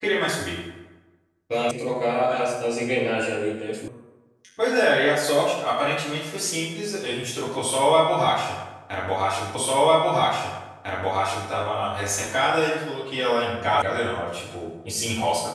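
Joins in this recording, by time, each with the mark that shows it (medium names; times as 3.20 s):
1.71 s: sound stops dead
3.88 s: sound stops dead
9.55 s: repeat of the last 1.95 s
13.82 s: sound stops dead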